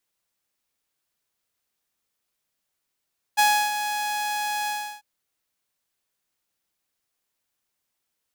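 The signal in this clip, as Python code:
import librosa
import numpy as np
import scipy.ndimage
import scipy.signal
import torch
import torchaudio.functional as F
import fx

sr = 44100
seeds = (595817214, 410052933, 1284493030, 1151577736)

y = fx.adsr_tone(sr, wave='saw', hz=837.0, attack_ms=22.0, decay_ms=315.0, sustain_db=-10.0, held_s=1.31, release_ms=336.0, level_db=-12.5)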